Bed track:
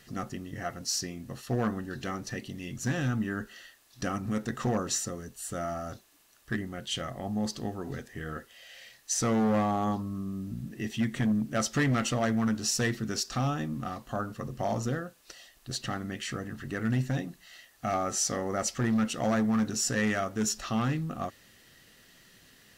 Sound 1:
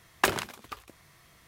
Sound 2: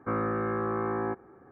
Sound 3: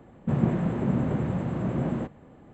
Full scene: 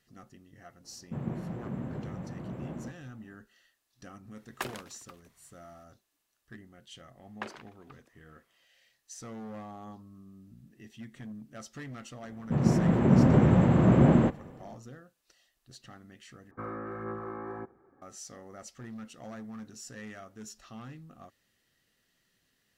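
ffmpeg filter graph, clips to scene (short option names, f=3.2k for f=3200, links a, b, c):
-filter_complex "[3:a]asplit=2[a][b];[1:a]asplit=2[c][d];[0:a]volume=-16.5dB[e];[d]highpass=280,lowpass=2.7k[f];[b]dynaudnorm=f=120:g=9:m=11.5dB[g];[2:a]aphaser=in_gain=1:out_gain=1:delay=3.7:decay=0.35:speed=1.7:type=sinusoidal[h];[e]asplit=2[i][j];[i]atrim=end=16.514[k];[h]atrim=end=1.51,asetpts=PTS-STARTPTS,volume=-9.5dB[l];[j]atrim=start=18.016[m];[a]atrim=end=2.53,asetpts=PTS-STARTPTS,volume=-11.5dB,afade=t=in:d=0.004:c=hsin,afade=t=out:st=2.526:d=0.004:c=hsin,adelay=840[n];[c]atrim=end=1.47,asetpts=PTS-STARTPTS,volume=-12dB,afade=t=in:d=0.004:c=hsin,afade=t=out:st=1.466:d=0.004:c=hsin,adelay=192717S[o];[f]atrim=end=1.47,asetpts=PTS-STARTPTS,volume=-14.5dB,afade=t=in:d=0.004:c=hsin,afade=t=out:st=1.466:d=0.004:c=hsin,adelay=7180[p];[g]atrim=end=2.53,asetpts=PTS-STARTPTS,volume=-3.5dB,afade=t=in:d=0.004:c=hsin,afade=t=out:st=2.526:d=0.004:c=hsin,adelay=12230[q];[k][l]acrossfade=d=0.004:c1=hsin:c2=hsin[r];[r][m]acrossfade=d=0.004:c1=hsin:c2=hsin[s];[s][n][o][p][q]amix=inputs=5:normalize=0"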